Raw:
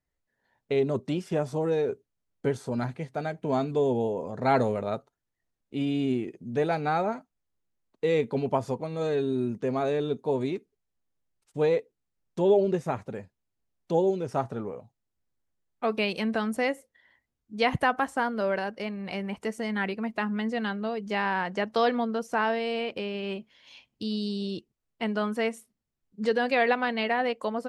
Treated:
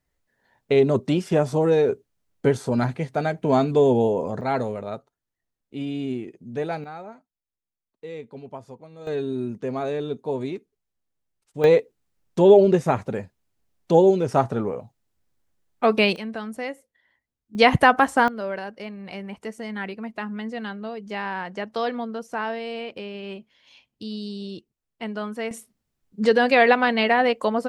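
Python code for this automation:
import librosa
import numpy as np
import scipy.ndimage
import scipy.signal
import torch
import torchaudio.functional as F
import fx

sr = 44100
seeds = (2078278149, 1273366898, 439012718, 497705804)

y = fx.gain(x, sr, db=fx.steps((0.0, 7.5), (4.41, -1.5), (6.84, -11.5), (9.07, 0.0), (11.64, 8.5), (16.16, -4.0), (17.55, 9.0), (18.28, -2.0), (25.51, 7.5)))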